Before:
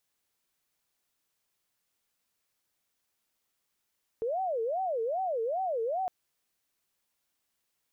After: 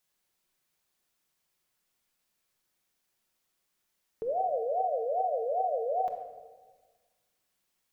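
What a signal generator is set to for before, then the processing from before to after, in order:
siren wail 446–766 Hz 2.5 per second sine −28 dBFS 1.86 s
rectangular room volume 1,100 cubic metres, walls mixed, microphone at 1 metre

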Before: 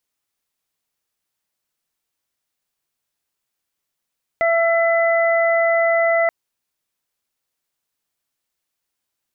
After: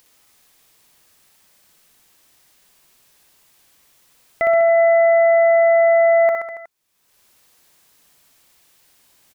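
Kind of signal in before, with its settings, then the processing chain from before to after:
steady harmonic partials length 1.88 s, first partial 669 Hz, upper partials −11/−5 dB, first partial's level −15 dB
notch filter 1,400 Hz, Q 24
upward compression, threshold −41 dBFS
on a send: reverse bouncing-ball delay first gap 60 ms, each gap 1.1×, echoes 5

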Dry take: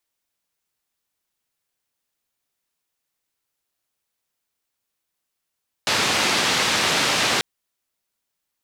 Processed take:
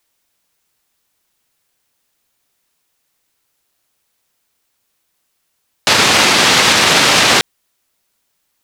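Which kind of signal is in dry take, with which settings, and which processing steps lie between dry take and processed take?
band-limited noise 120–4,400 Hz, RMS −20.5 dBFS 1.54 s
boost into a limiter +12.5 dB

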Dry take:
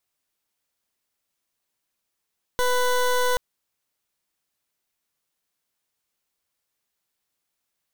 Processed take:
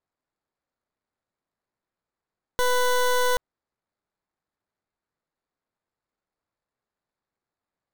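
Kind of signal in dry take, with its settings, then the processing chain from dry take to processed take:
pulse wave 497 Hz, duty 20% −21 dBFS 0.78 s
running median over 15 samples

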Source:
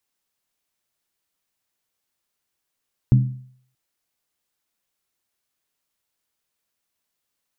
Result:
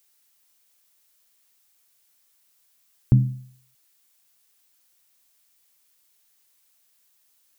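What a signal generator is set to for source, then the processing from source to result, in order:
struck skin, lowest mode 128 Hz, decay 0.57 s, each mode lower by 9 dB, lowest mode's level −8 dB
background noise blue −65 dBFS

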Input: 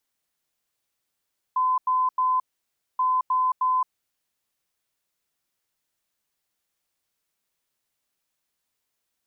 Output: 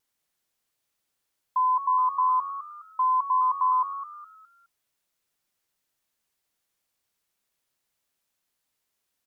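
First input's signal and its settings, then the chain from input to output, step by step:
beeps in groups sine 1,020 Hz, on 0.22 s, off 0.09 s, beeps 3, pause 0.59 s, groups 2, −19 dBFS
pitch vibrato 0.42 Hz 6.2 cents
on a send: echo with shifted repeats 208 ms, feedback 36%, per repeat +91 Hz, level −12 dB

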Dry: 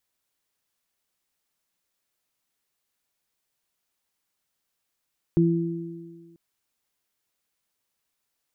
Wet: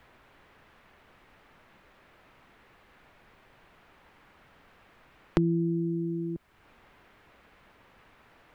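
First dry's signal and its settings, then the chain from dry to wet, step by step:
harmonic partials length 0.99 s, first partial 168 Hz, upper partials −1 dB, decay 1.56 s, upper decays 1.75 s, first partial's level −17 dB
low-shelf EQ 69 Hz +7 dB
multiband upward and downward compressor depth 100%

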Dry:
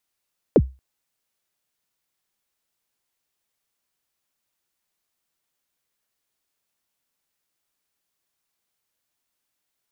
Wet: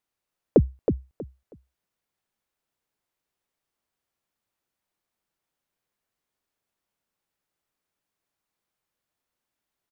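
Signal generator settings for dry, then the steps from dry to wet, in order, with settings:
synth kick length 0.23 s, from 570 Hz, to 65 Hz, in 50 ms, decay 0.27 s, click off, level −6.5 dB
high-shelf EQ 2,300 Hz −9.5 dB
on a send: repeating echo 320 ms, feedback 22%, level −6.5 dB

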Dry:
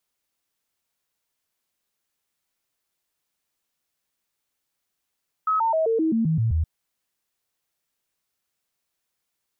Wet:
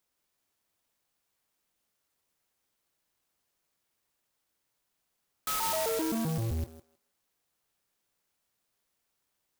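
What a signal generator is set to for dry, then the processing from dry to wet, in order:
stepped sweep 1,280 Hz down, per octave 2, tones 9, 0.13 s, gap 0.00 s −18.5 dBFS
hard clipping −30.5 dBFS
on a send: feedback echo with a high-pass in the loop 158 ms, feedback 23%, high-pass 630 Hz, level −4.5 dB
on the sum: converter with an unsteady clock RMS 0.12 ms

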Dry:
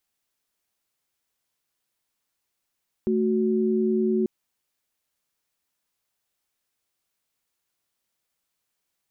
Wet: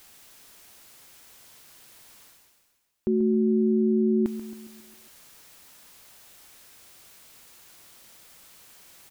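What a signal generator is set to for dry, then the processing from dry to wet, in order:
held notes A3/F#4 sine, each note −22.5 dBFS 1.19 s
reversed playback
upward compression, threshold −30 dBFS
reversed playback
repeating echo 136 ms, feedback 54%, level −13 dB

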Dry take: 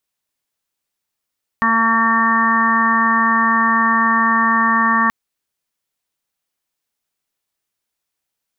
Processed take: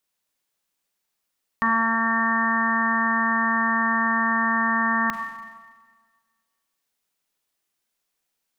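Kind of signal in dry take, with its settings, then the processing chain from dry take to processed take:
steady harmonic partials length 3.48 s, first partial 227 Hz, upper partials −18/−14/−2.5/5/−7/−8/2.5 dB, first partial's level −20 dB
parametric band 89 Hz −14.5 dB 0.47 octaves
brickwall limiter −11.5 dBFS
four-comb reverb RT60 1.5 s, combs from 32 ms, DRR 6 dB

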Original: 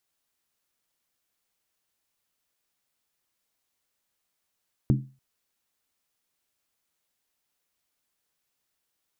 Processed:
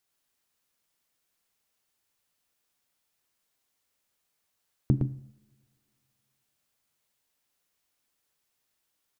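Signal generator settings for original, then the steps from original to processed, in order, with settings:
struck skin length 0.29 s, lowest mode 133 Hz, decay 0.34 s, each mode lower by 4.5 dB, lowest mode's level −15.5 dB
on a send: single-tap delay 112 ms −5 dB
on the sum: coupled-rooms reverb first 0.73 s, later 2.9 s, from −24 dB, DRR 15.5 dB

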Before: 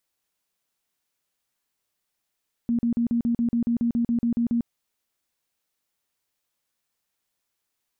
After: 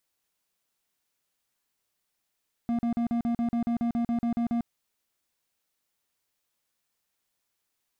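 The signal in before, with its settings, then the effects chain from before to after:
tone bursts 235 Hz, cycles 23, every 0.14 s, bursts 14, −19.5 dBFS
hard clipping −25.5 dBFS

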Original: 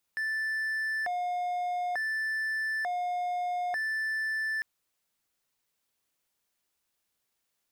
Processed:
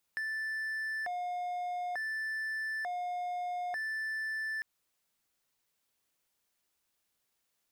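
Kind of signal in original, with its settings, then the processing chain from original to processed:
siren hi-lo 715–1,760 Hz 0.56 per second triangle −26.5 dBFS 4.45 s
downward compressor, threshold −34 dBFS

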